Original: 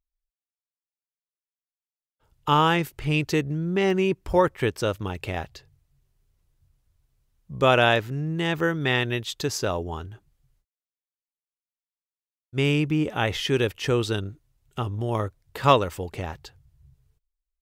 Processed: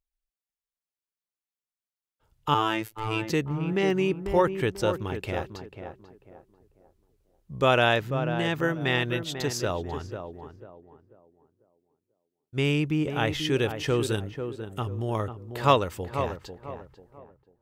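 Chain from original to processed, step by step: 14.01–14.8 resonant high shelf 6900 Hz +6 dB, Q 1.5; on a send: tape echo 0.493 s, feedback 37%, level -6.5 dB, low-pass 1100 Hz; 2.54–3.3 on the sum: robotiser 110 Hz; gain -2.5 dB

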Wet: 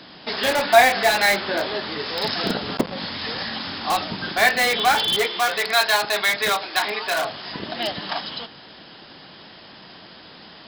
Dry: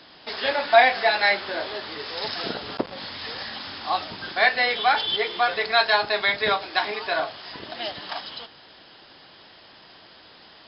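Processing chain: bell 190 Hz +8 dB 1.1 oct; in parallel at -6.5 dB: wrapped overs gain 18.5 dB; 5.26–7.25 on the sum: low shelf 370 Hz -11.5 dB; gain +1.5 dB

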